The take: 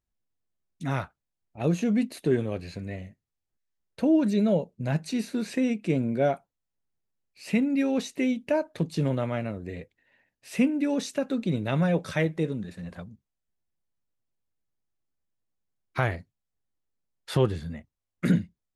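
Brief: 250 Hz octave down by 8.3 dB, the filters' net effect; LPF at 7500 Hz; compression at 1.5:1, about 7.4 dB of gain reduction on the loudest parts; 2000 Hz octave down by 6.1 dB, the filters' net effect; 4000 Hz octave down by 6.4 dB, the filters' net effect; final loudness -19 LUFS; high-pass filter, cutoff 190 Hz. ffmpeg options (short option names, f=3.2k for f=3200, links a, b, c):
-af "highpass=190,lowpass=7.5k,equalizer=f=250:t=o:g=-8.5,equalizer=f=2k:t=o:g=-6.5,equalizer=f=4k:t=o:g=-5.5,acompressor=threshold=-43dB:ratio=1.5,volume=20.5dB"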